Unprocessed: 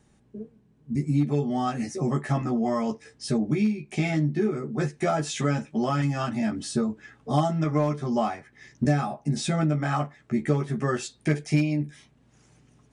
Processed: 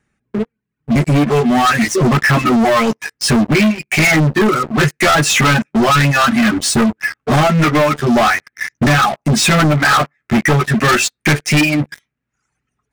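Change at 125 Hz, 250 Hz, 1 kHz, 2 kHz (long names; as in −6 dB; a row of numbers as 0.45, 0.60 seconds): +10.5, +11.5, +15.5, +22.5 decibels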